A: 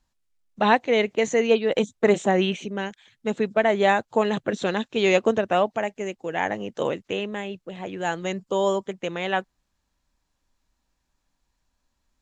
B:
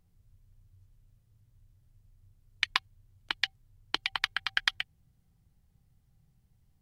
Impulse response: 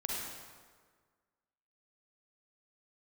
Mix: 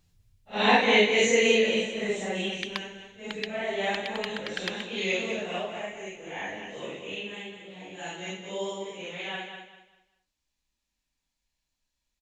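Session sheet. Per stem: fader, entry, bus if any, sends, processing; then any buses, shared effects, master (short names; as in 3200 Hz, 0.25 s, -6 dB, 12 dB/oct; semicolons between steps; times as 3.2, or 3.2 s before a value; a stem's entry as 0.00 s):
1.5 s -2 dB -> 2.02 s -11.5 dB, 0.00 s, no send, echo send -7.5 dB, phase scrambler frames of 0.2 s; resonant high shelf 1800 Hz +7 dB, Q 1.5
+0.5 dB, 0.00 s, no send, no echo send, auto duck -7 dB, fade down 0.30 s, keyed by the first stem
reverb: off
echo: feedback echo 0.197 s, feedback 29%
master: dry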